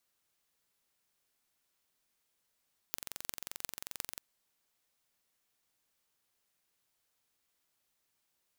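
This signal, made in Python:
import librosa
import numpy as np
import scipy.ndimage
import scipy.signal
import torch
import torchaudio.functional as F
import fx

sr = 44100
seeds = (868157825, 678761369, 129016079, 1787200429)

y = fx.impulse_train(sr, length_s=1.26, per_s=22.6, accent_every=8, level_db=-7.5)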